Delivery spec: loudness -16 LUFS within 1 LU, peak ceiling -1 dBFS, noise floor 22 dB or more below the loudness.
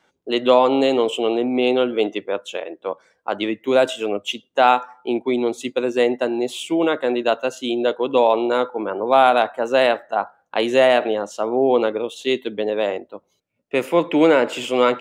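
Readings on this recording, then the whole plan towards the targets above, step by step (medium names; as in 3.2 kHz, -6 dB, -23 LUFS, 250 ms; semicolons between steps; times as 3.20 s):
loudness -19.5 LUFS; peak level -1.5 dBFS; loudness target -16.0 LUFS
-> trim +3.5 dB; peak limiter -1 dBFS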